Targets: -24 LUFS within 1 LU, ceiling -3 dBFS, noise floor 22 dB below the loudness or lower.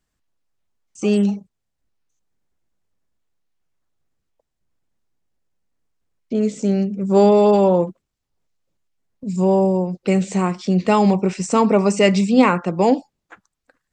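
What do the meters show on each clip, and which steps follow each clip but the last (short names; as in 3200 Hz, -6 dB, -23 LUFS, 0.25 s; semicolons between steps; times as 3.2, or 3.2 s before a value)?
loudness -17.5 LUFS; peak -1.5 dBFS; loudness target -24.0 LUFS
-> gain -6.5 dB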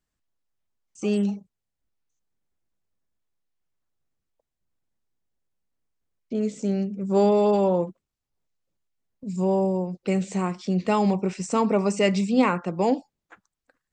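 loudness -24.0 LUFS; peak -8.0 dBFS; noise floor -84 dBFS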